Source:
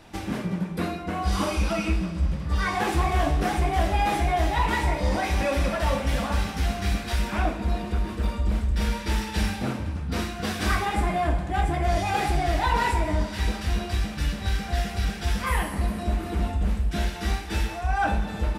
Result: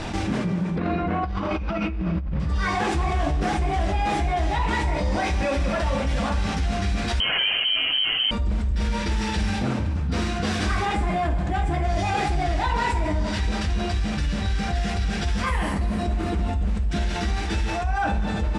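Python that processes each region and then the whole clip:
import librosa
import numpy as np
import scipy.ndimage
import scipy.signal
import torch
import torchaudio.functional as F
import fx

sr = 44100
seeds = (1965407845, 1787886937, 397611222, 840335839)

y = fx.chain(x, sr, fx.over_compress(threshold_db=-30.0, ratio=-0.5),
    fx.lowpass(hz=2400.0, slope=12), at=(0.76, 2.4))
y = fx.chain(y, sr, fx.freq_invert(carrier_hz=3100),
    fx.env_flatten(amount_pct=50), at=(7.2, 8.31))
y = scipy.signal.sosfilt(scipy.signal.butter(4, 8500.0, 'lowpass', fs=sr, output='sos'), y)
y = fx.low_shelf(y, sr, hz=220.0, db=3.5)
y = fx.env_flatten(y, sr, amount_pct=70)
y = y * 10.0 ** (-4.5 / 20.0)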